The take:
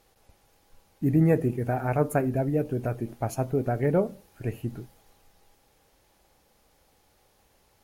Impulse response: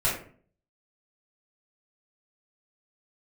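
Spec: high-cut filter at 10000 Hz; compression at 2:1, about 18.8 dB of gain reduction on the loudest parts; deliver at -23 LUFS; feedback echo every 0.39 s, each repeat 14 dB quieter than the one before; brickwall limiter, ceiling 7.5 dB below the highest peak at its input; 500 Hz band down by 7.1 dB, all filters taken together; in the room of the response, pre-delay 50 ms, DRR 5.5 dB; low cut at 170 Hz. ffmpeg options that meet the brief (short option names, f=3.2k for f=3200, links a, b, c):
-filter_complex "[0:a]highpass=170,lowpass=10k,equalizer=f=500:t=o:g=-9,acompressor=threshold=-57dB:ratio=2,alimiter=level_in=14.5dB:limit=-24dB:level=0:latency=1,volume=-14.5dB,aecho=1:1:390|780:0.2|0.0399,asplit=2[a][b];[1:a]atrim=start_sample=2205,adelay=50[c];[b][c]afir=irnorm=-1:irlink=0,volume=-16.5dB[d];[a][d]amix=inputs=2:normalize=0,volume=26dB"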